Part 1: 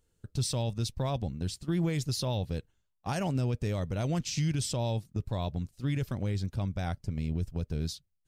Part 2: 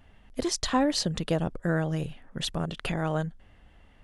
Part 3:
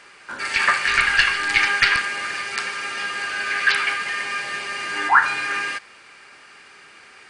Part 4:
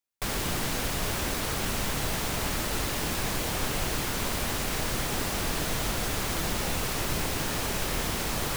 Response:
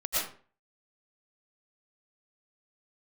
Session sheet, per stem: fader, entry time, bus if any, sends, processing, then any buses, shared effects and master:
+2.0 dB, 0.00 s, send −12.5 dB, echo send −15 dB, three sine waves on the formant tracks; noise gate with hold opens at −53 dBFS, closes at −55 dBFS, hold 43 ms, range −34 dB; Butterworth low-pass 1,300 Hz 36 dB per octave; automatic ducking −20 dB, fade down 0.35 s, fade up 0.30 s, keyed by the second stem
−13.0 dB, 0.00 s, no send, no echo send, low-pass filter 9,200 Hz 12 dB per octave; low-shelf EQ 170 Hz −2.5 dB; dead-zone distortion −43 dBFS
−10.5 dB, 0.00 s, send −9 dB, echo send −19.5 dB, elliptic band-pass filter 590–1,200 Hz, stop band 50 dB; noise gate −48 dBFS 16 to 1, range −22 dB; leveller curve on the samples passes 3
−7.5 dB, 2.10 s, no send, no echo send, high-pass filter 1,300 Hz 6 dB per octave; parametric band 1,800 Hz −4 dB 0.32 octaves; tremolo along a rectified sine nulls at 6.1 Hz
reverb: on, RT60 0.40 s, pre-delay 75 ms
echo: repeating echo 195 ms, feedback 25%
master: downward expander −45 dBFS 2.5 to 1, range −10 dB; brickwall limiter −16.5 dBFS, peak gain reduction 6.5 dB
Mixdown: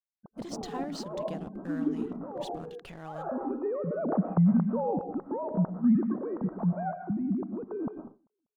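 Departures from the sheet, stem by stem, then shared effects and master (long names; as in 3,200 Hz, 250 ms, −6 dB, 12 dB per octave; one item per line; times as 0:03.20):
stem 3: muted
stem 4: muted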